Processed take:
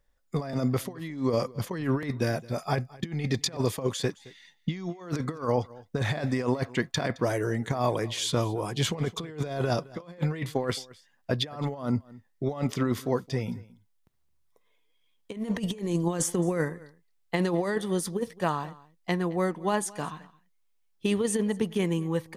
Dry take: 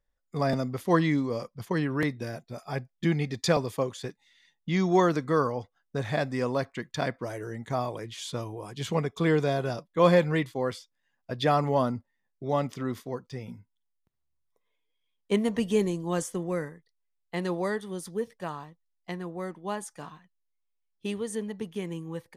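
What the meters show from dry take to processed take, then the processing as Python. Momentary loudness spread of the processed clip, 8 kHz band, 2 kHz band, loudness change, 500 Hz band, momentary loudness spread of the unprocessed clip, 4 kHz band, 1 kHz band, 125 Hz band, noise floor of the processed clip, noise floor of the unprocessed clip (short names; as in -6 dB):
8 LU, +7.0 dB, -1.0 dB, -0.5 dB, -1.5 dB, 15 LU, +4.0 dB, -2.5 dB, +1.5 dB, -68 dBFS, -78 dBFS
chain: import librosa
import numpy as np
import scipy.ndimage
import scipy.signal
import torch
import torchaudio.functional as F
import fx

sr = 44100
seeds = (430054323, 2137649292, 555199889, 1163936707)

p1 = fx.over_compress(x, sr, threshold_db=-31.0, ratio=-0.5)
p2 = p1 + fx.echo_single(p1, sr, ms=217, db=-21.5, dry=0)
y = p2 * librosa.db_to_amplitude(4.0)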